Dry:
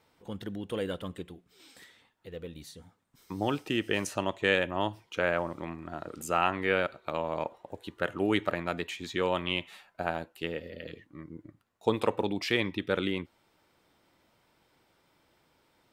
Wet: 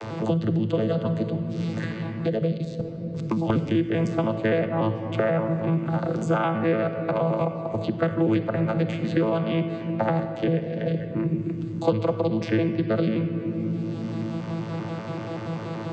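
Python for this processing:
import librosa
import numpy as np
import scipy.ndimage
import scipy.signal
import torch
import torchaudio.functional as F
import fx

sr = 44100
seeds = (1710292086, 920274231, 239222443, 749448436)

y = fx.vocoder_arp(x, sr, chord='bare fifth', root=45, every_ms=96)
y = fx.level_steps(y, sr, step_db=23, at=(2.57, 3.5))
y = fx.room_shoebox(y, sr, seeds[0], volume_m3=1800.0, walls='mixed', distance_m=0.81)
y = fx.band_squash(y, sr, depth_pct=100)
y = F.gain(torch.from_numpy(y), 7.5).numpy()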